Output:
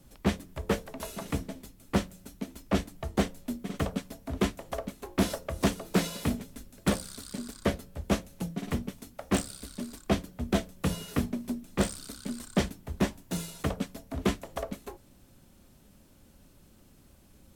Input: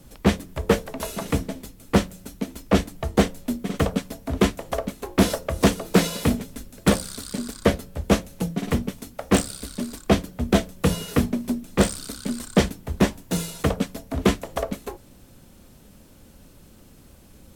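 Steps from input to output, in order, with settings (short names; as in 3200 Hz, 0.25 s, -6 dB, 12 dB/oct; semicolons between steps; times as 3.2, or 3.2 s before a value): notch 480 Hz, Q 12; gain -8 dB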